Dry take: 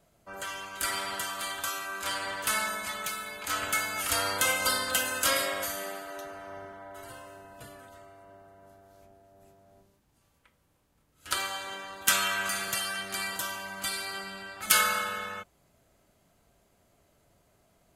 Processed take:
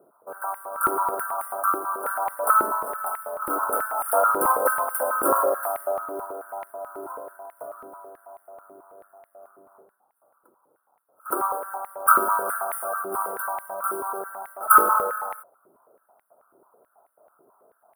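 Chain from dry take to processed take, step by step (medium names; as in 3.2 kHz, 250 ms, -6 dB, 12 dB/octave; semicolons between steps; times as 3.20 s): square wave that keeps the level; Chebyshev band-stop 1.4–9.3 kHz, order 5; step-sequenced high-pass 9.2 Hz 360–2100 Hz; trim +1.5 dB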